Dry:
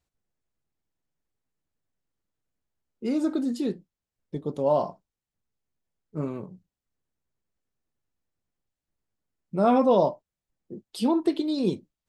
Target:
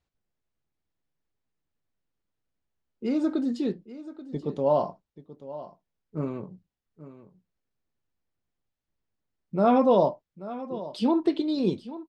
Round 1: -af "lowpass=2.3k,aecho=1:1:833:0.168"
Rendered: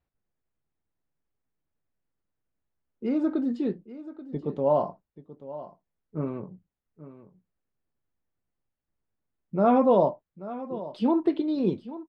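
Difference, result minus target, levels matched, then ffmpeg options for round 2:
4000 Hz band -7.5 dB
-af "lowpass=5.1k,aecho=1:1:833:0.168"

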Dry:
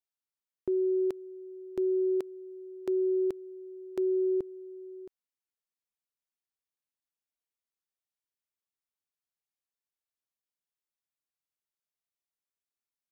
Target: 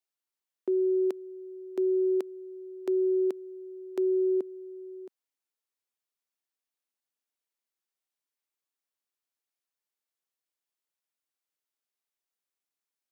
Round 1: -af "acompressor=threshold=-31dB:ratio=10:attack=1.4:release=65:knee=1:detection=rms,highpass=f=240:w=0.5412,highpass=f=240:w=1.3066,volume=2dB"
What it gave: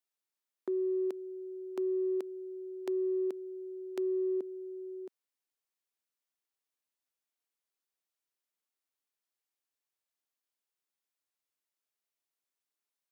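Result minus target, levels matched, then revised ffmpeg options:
compressor: peak gain reduction +6 dB
-af "highpass=f=240:w=0.5412,highpass=f=240:w=1.3066,volume=2dB"

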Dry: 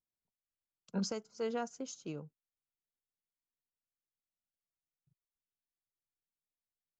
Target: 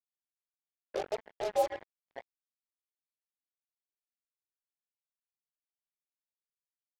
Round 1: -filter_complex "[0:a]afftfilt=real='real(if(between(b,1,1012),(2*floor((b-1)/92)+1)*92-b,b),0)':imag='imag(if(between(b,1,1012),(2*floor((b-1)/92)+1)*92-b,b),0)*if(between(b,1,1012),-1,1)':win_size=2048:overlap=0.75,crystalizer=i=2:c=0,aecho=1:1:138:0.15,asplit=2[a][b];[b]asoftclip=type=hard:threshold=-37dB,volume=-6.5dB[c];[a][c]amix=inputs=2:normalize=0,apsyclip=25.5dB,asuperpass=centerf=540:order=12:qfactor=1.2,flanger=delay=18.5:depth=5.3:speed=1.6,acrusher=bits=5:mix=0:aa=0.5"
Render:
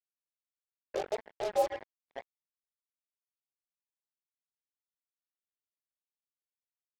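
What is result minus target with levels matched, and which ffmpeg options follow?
hard clip: distortion -4 dB
-filter_complex "[0:a]afftfilt=real='real(if(between(b,1,1012),(2*floor((b-1)/92)+1)*92-b,b),0)':imag='imag(if(between(b,1,1012),(2*floor((b-1)/92)+1)*92-b,b),0)*if(between(b,1,1012),-1,1)':win_size=2048:overlap=0.75,crystalizer=i=2:c=0,aecho=1:1:138:0.15,asplit=2[a][b];[b]asoftclip=type=hard:threshold=-43.5dB,volume=-6.5dB[c];[a][c]amix=inputs=2:normalize=0,apsyclip=25.5dB,asuperpass=centerf=540:order=12:qfactor=1.2,flanger=delay=18.5:depth=5.3:speed=1.6,acrusher=bits=5:mix=0:aa=0.5"

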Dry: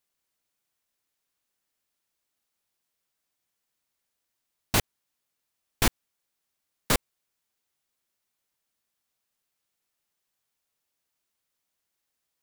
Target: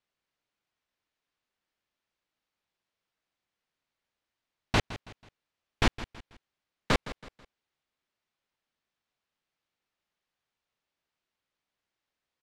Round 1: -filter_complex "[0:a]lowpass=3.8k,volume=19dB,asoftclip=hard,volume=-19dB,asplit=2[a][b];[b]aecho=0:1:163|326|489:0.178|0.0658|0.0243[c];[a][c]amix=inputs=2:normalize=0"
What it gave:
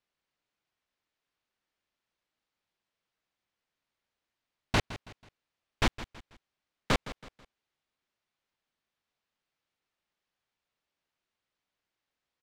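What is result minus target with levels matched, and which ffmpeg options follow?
overloaded stage: distortion +15 dB
-filter_complex "[0:a]lowpass=3.8k,volume=12dB,asoftclip=hard,volume=-12dB,asplit=2[a][b];[b]aecho=0:1:163|326|489:0.178|0.0658|0.0243[c];[a][c]amix=inputs=2:normalize=0"

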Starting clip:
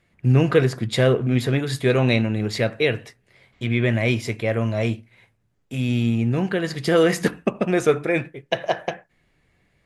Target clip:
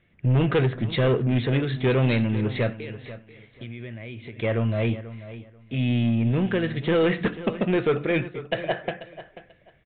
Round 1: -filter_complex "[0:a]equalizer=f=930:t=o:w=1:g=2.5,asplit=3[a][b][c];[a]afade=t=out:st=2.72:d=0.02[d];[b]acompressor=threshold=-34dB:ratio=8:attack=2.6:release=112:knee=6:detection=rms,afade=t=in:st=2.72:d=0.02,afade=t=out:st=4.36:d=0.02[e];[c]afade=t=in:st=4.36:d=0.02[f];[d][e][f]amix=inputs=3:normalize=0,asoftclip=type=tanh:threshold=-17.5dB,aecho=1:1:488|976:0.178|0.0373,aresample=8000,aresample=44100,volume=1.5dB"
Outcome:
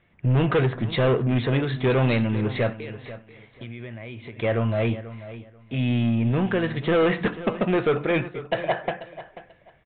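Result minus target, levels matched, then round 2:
1000 Hz band +3.5 dB
-filter_complex "[0:a]equalizer=f=930:t=o:w=1:g=-6.5,asplit=3[a][b][c];[a]afade=t=out:st=2.72:d=0.02[d];[b]acompressor=threshold=-34dB:ratio=8:attack=2.6:release=112:knee=6:detection=rms,afade=t=in:st=2.72:d=0.02,afade=t=out:st=4.36:d=0.02[e];[c]afade=t=in:st=4.36:d=0.02[f];[d][e][f]amix=inputs=3:normalize=0,asoftclip=type=tanh:threshold=-17.5dB,aecho=1:1:488|976:0.178|0.0373,aresample=8000,aresample=44100,volume=1.5dB"

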